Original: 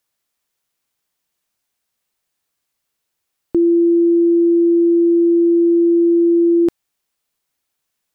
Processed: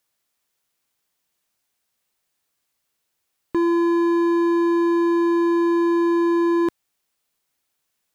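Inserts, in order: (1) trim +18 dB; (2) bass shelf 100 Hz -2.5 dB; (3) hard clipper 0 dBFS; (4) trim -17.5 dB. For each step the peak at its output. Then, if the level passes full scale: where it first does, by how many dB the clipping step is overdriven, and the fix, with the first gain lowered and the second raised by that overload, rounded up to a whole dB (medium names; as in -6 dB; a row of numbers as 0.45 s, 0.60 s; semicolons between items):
+8.5 dBFS, +8.5 dBFS, 0.0 dBFS, -17.5 dBFS; step 1, 8.5 dB; step 1 +9 dB, step 4 -8.5 dB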